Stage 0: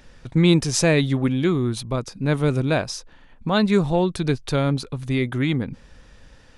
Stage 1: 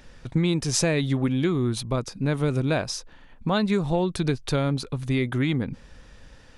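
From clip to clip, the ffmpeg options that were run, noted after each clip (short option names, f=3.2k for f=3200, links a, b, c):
-af "acompressor=threshold=-19dB:ratio=6"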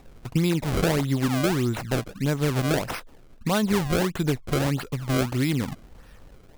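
-af "acrusher=samples=28:mix=1:aa=0.000001:lfo=1:lforange=44.8:lforate=1.6"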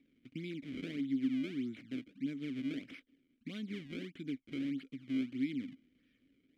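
-filter_complex "[0:a]asplit=3[a][b][c];[a]bandpass=f=270:t=q:w=8,volume=0dB[d];[b]bandpass=f=2.29k:t=q:w=8,volume=-6dB[e];[c]bandpass=f=3.01k:t=q:w=8,volume=-9dB[f];[d][e][f]amix=inputs=3:normalize=0,volume=-5.5dB"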